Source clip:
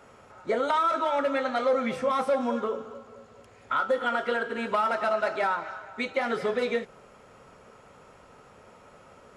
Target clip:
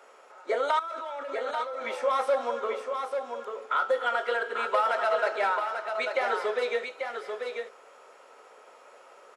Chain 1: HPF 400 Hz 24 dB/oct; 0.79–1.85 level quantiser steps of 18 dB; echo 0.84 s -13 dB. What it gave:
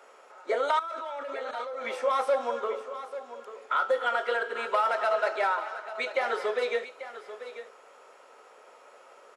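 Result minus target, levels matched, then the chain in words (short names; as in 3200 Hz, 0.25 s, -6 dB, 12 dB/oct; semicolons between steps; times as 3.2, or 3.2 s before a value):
echo-to-direct -7 dB
HPF 400 Hz 24 dB/oct; 0.79–1.85 level quantiser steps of 18 dB; echo 0.84 s -6 dB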